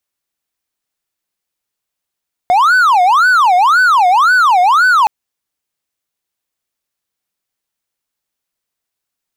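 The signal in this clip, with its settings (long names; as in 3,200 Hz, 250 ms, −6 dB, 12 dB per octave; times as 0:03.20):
siren wail 712–1,510 Hz 1.9 per second triangle −4.5 dBFS 2.57 s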